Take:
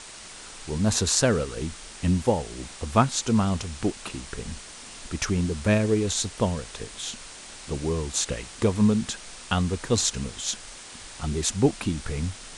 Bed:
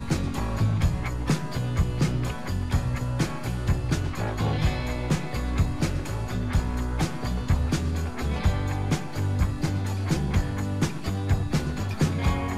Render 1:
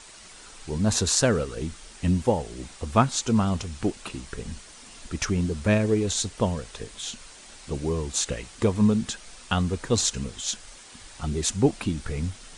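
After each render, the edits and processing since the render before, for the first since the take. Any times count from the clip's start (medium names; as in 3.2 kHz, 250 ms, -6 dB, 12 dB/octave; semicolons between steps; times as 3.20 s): noise reduction 6 dB, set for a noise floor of -43 dBFS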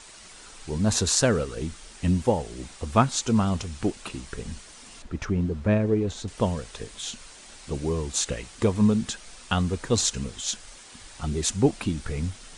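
5.02–6.28 s: low-pass 1.2 kHz 6 dB/octave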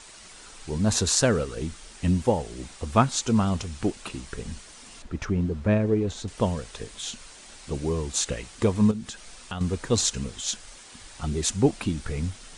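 8.91–9.61 s: compression 2:1, threshold -37 dBFS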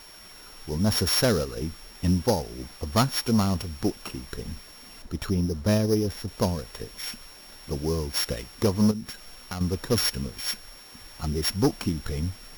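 sorted samples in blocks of 8 samples; overload inside the chain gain 15 dB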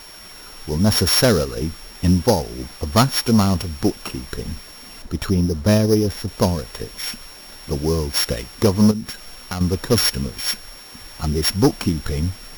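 trim +7 dB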